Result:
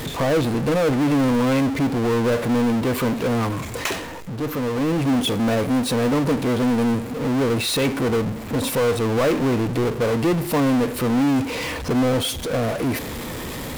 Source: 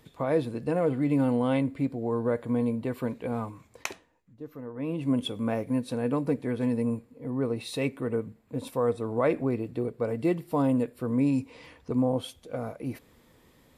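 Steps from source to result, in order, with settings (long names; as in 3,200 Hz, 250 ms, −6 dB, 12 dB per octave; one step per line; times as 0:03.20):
power curve on the samples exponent 0.35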